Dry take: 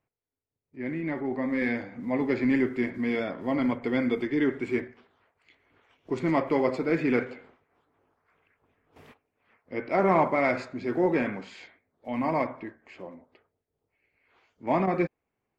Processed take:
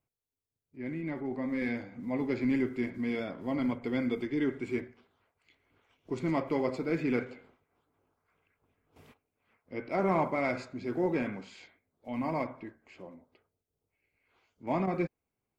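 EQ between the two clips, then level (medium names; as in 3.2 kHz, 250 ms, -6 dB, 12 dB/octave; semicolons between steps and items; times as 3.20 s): bass shelf 250 Hz +6.5 dB; treble shelf 4.3 kHz +8 dB; band-stop 1.8 kHz, Q 12; -7.5 dB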